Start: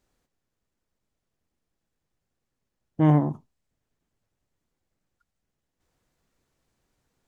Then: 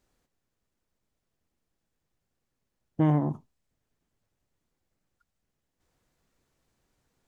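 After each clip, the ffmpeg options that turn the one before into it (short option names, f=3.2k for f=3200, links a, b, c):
-af "acompressor=threshold=-19dB:ratio=6"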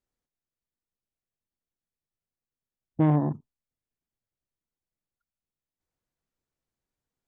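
-af "afwtdn=0.00631,volume=1.5dB"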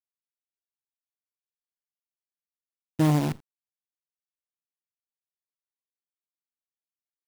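-af "acrusher=bits=6:dc=4:mix=0:aa=0.000001"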